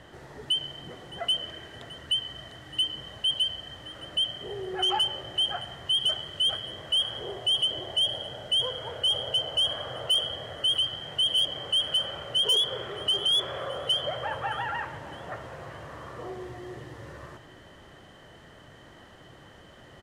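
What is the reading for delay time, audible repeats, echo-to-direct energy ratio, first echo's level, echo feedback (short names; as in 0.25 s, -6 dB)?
0.615 s, 2, -18.5 dB, -19.0 dB, 37%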